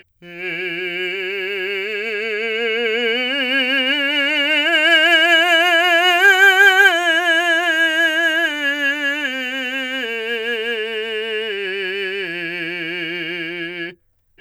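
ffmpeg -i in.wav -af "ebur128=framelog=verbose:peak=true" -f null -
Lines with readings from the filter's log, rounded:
Integrated loudness:
  I:         -15.8 LUFS
  Threshold: -26.0 LUFS
Loudness range:
  LRA:        10.6 LU
  Threshold: -35.3 LUFS
  LRA low:   -22.0 LUFS
  LRA high:  -11.4 LUFS
True peak:
  Peak:       -1.2 dBFS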